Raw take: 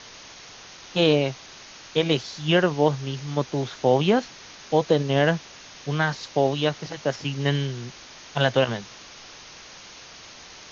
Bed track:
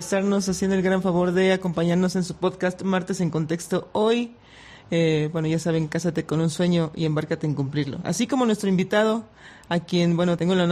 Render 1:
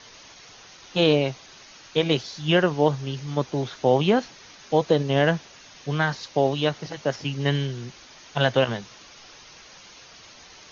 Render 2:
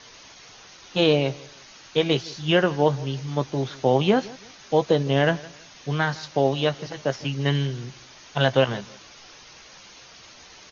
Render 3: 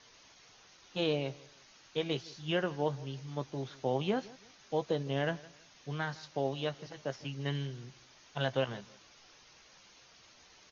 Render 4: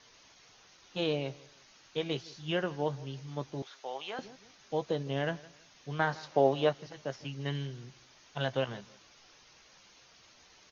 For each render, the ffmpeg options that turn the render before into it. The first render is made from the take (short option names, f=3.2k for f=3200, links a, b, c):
-af "afftdn=nr=6:nf=-45"
-filter_complex "[0:a]asplit=2[a][b];[b]adelay=15,volume=-13dB[c];[a][c]amix=inputs=2:normalize=0,aecho=1:1:162|324:0.0891|0.0258"
-af "volume=-12.5dB"
-filter_complex "[0:a]asettb=1/sr,asplit=3[a][b][c];[a]atrim=end=3.624[d];[b]atrim=start=3.62:end=4.19,asetpts=PTS-STARTPTS,afade=t=in:d=0.004:c=qsin,afade=t=out:st=0.566:d=0.004:c=qsin,highpass=810[e];[c]atrim=start=4.186[f];[d][e]acrossfade=d=0.004:c1=hsin:c2=qsin[g];[g][f]acrossfade=d=0.004:c1=qsin:c2=hsin,asettb=1/sr,asplit=3[h][i][j];[h]atrim=end=5.994[k];[i]atrim=start=5.99:end=6.73,asetpts=PTS-STARTPTS,afade=t=in:d=0.004:c=qsin,afade=t=out:st=0.736:d=0.004:c=qsin,equalizer=f=650:w=0.4:g=9.5[l];[j]atrim=start=6.726[m];[k][l]acrossfade=d=0.004:c1=hsin:c2=qsin[n];[n][m]acrossfade=d=0.004:c1=qsin:c2=hsin"